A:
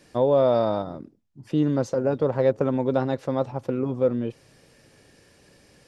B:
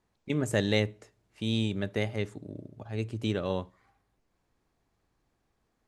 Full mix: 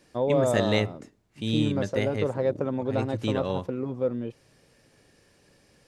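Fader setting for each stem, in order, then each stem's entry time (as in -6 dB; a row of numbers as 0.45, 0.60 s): -5.0, +1.5 dB; 0.00, 0.00 s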